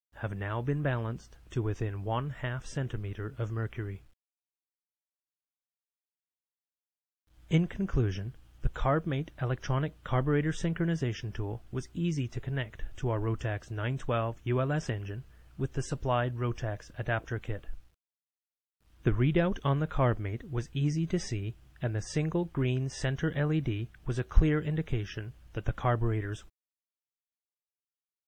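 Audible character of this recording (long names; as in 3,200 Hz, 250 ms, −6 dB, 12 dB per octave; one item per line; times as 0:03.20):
a quantiser's noise floor 12 bits, dither none
MP3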